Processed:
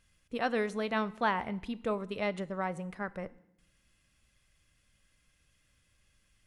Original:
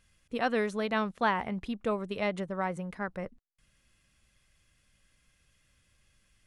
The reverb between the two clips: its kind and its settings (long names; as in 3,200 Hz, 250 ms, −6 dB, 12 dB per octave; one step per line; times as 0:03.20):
feedback delay network reverb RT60 0.79 s, low-frequency decay 1.5×, high-frequency decay 1×, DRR 16 dB
level −2 dB